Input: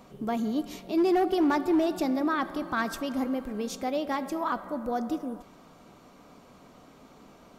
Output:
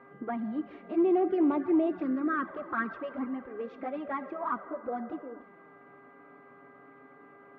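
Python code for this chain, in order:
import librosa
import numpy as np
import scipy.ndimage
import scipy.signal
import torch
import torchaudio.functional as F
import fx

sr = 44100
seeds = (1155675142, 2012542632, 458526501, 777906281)

y = fx.env_flanger(x, sr, rest_ms=8.0, full_db=-21.0)
y = fx.dmg_buzz(y, sr, base_hz=400.0, harmonics=5, level_db=-56.0, tilt_db=-2, odd_only=False)
y = fx.cabinet(y, sr, low_hz=140.0, low_slope=12, high_hz=2100.0, hz=(160.0, 840.0, 1300.0), db=(-6, -6, 3))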